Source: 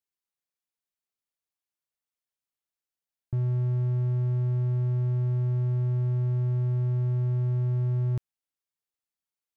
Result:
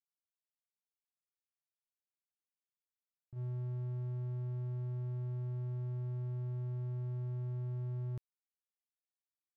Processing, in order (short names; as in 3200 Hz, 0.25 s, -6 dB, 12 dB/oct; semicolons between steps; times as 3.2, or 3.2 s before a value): gate -22 dBFS, range -32 dB; gain +11 dB